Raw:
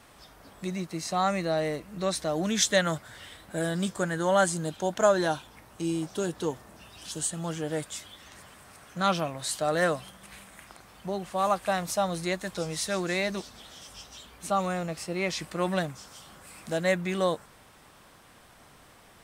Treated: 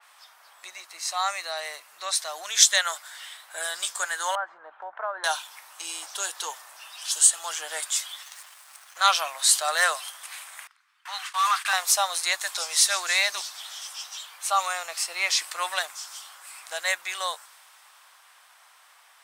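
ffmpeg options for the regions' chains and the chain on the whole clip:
ffmpeg -i in.wav -filter_complex "[0:a]asettb=1/sr,asplit=3[link_01][link_02][link_03];[link_01]atrim=end=4.354[link_04];[link_02]atrim=start=4.35:end=5.24,asetpts=PTS-STARTPTS,afade=type=in:duration=0.004:curve=qsin,afade=type=out:start_time=0.886:duration=0.004:curve=qsin,lowpass=frequency=1500:width=0.5412,lowpass=frequency=1500:width=1.3066,acompressor=threshold=-31dB:ratio=2:attack=3.2:release=140:knee=1:detection=peak[link_05];[link_03]atrim=start=5.236[link_06];[link_04][link_05]acrossfade=duration=0.004:curve1=hsin:curve2=qsin[link_07];[link_07][link_06]acrossfade=duration=0.004:curve1=qsin:curve2=hsin,asettb=1/sr,asplit=3[link_08][link_09][link_10];[link_08]atrim=end=8.234[link_11];[link_09]atrim=start=8.23:end=9.04,asetpts=PTS-STARTPTS,afade=type=in:duration=0.004:curve=qsin,afade=type=out:start_time=0.806:duration=0.004:curve=qsin,equalizer=frequency=12000:width_type=o:width=2.4:gain=3,aeval=exprs='sgn(val(0))*max(abs(val(0))-0.00237,0)':channel_layout=same[link_12];[link_10]atrim=start=9.036[link_13];[link_11][link_12]acrossfade=duration=0.004:curve1=hsin:curve2=qsin[link_14];[link_14][link_13]acrossfade=duration=0.004:curve1=qsin:curve2=hsin,asettb=1/sr,asplit=3[link_15][link_16][link_17];[link_15]atrim=end=10.674[link_18];[link_16]atrim=start=10.67:end=11.73,asetpts=PTS-STARTPTS,afade=type=in:duration=0.004:curve=qsin,afade=type=out:start_time=1.056:duration=0.004:curve=qsin,agate=range=-27dB:threshold=-45dB:ratio=16:release=100:detection=peak,highpass=frequency=1200:width=0.5412,highpass=frequency=1200:width=1.3066,asplit=2[link_19][link_20];[link_20]highpass=frequency=720:poles=1,volume=19dB,asoftclip=type=tanh:threshold=-20.5dB[link_21];[link_19][link_21]amix=inputs=2:normalize=0,lowpass=frequency=1800:poles=1,volume=-6dB[link_22];[link_17]atrim=start=11.726[link_23];[link_18][link_22]acrossfade=duration=0.004:curve1=hsin:curve2=qsin[link_24];[link_24][link_23]acrossfade=duration=0.004:curve1=qsin:curve2=hsin,highpass=frequency=850:width=0.5412,highpass=frequency=850:width=1.3066,dynaudnorm=framelen=880:gausssize=9:maxgain=5dB,adynamicequalizer=threshold=0.00708:dfrequency=3300:dqfactor=0.7:tfrequency=3300:tqfactor=0.7:attack=5:release=100:ratio=0.375:range=3.5:mode=boostabove:tftype=highshelf,volume=2dB" out.wav

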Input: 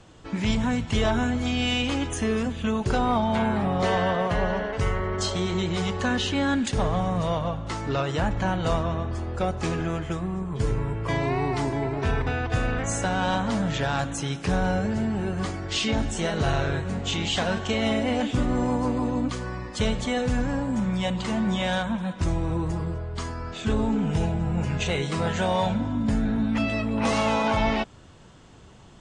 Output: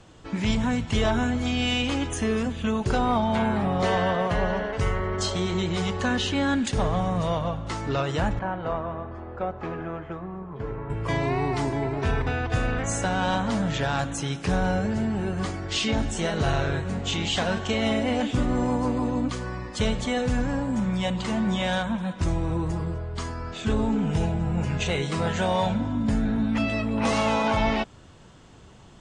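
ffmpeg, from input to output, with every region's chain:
ffmpeg -i in.wav -filter_complex "[0:a]asettb=1/sr,asplit=3[link_01][link_02][link_03];[link_01]atrim=end=8.394[link_04];[link_02]atrim=start=8.39:end=10.9,asetpts=PTS-STARTPTS,afade=type=in:duration=0.004:curve=qsin,afade=type=out:start_time=2.506:duration=0.004:curve=qsin,lowpass=1500,lowshelf=frequency=270:gain=-11[link_05];[link_03]atrim=start=10.896[link_06];[link_04][link_05]acrossfade=duration=0.004:curve1=hsin:curve2=qsin[link_07];[link_07][link_06]acrossfade=duration=0.004:curve1=qsin:curve2=hsin" out.wav

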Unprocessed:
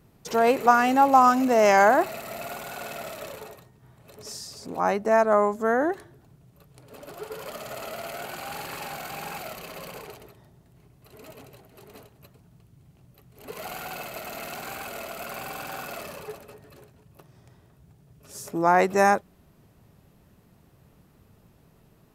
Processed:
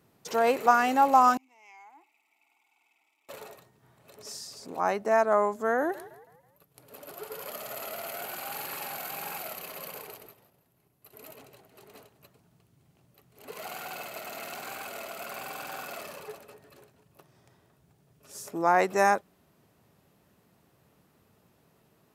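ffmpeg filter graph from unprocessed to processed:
ffmpeg -i in.wav -filter_complex "[0:a]asettb=1/sr,asplit=3[link_01][link_02][link_03];[link_01]atrim=end=1.374[link_04];[link_02]atrim=start=1.37:end=3.29,asetpts=PTS-STARTPTS,afade=type=in:duration=0.004:curve=qsin,afade=type=out:start_time=1.916:duration=0.004:curve=qsin,asplit=3[link_05][link_06][link_07];[link_05]bandpass=frequency=300:width_type=q:width=8,volume=0dB[link_08];[link_06]bandpass=frequency=870:width_type=q:width=8,volume=-6dB[link_09];[link_07]bandpass=frequency=2240:width_type=q:width=8,volume=-9dB[link_10];[link_08][link_09][link_10]amix=inputs=3:normalize=0,aderivative,bandreject=frequency=4200:width=6.9[link_11];[link_03]atrim=start=3.286[link_12];[link_04][link_11]acrossfade=duration=0.004:curve1=hsin:curve2=qsin[link_13];[link_13][link_12]acrossfade=duration=0.004:curve1=qsin:curve2=hsin,asettb=1/sr,asplit=3[link_14][link_15][link_16];[link_14]atrim=end=5.784[link_17];[link_15]atrim=start=5.78:end=11.36,asetpts=PTS-STARTPTS,afade=type=in:duration=0.004:curve=qsin,afade=type=out:start_time=5.576:duration=0.004:curve=qsin,agate=range=-7dB:threshold=-54dB:ratio=16:release=100:detection=peak,equalizer=frequency=12000:width=2.4:gain=13,asplit=5[link_18][link_19][link_20][link_21][link_22];[link_19]adelay=162,afreqshift=52,volume=-17dB[link_23];[link_20]adelay=324,afreqshift=104,volume=-24.5dB[link_24];[link_21]adelay=486,afreqshift=156,volume=-32.1dB[link_25];[link_22]adelay=648,afreqshift=208,volume=-39.6dB[link_26];[link_18][link_23][link_24][link_25][link_26]amix=inputs=5:normalize=0,atrim=end_sample=246078[link_27];[link_16]atrim=start=11.356[link_28];[link_17][link_27]acrossfade=duration=0.004:curve1=hsin:curve2=qsin[link_29];[link_29][link_28]acrossfade=duration=0.004:curve1=qsin:curve2=hsin,highpass=59,lowshelf=frequency=180:gain=-11,volume=-2.5dB" out.wav

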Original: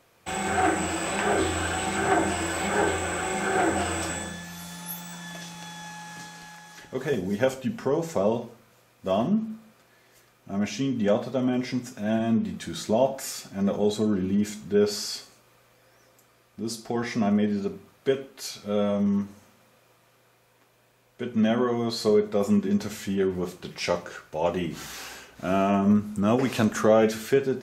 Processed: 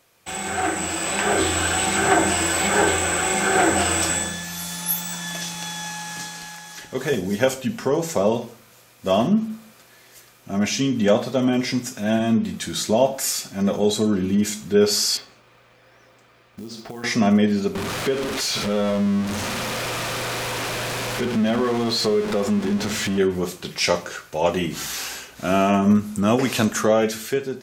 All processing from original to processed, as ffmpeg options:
ffmpeg -i in.wav -filter_complex "[0:a]asettb=1/sr,asplit=3[link_01][link_02][link_03];[link_01]atrim=end=15.174[link_04];[link_02]atrim=start=15.17:end=17.04,asetpts=PTS-STARTPTS,afade=type=in:duration=0.004:curve=qsin,afade=type=out:start_time=1.866:duration=0.004:curve=qsin,lowpass=3100,acompressor=threshold=-38dB:ratio=6:attack=3.2:release=140:knee=1:detection=peak,acrusher=bits=6:mode=log:mix=0:aa=0.000001[link_05];[link_03]atrim=start=17.036[link_06];[link_04][link_05]acrossfade=duration=0.004:curve1=hsin:curve2=qsin[link_07];[link_07][link_06]acrossfade=duration=0.004:curve1=qsin:curve2=hsin,asettb=1/sr,asplit=3[link_08][link_09][link_10];[link_08]atrim=end=17.754[link_11];[link_09]atrim=start=17.75:end=23.18,asetpts=PTS-STARTPTS,afade=type=in:duration=0.004:curve=qsin,afade=type=out:start_time=5.426:duration=0.004:curve=qsin,aeval=exprs='val(0)+0.5*0.0398*sgn(val(0))':channel_layout=same,acompressor=threshold=-29dB:ratio=2:attack=3.2:release=140:knee=1:detection=peak,aemphasis=mode=reproduction:type=50fm[link_12];[link_10]atrim=start=23.176[link_13];[link_11][link_12]acrossfade=duration=0.004:curve1=hsin:curve2=qsin[link_14];[link_14][link_13]acrossfade=duration=0.004:curve1=qsin:curve2=hsin,highshelf=frequency=2500:gain=8,dynaudnorm=framelen=250:gausssize=9:maxgain=9dB,volume=-2.5dB" out.wav

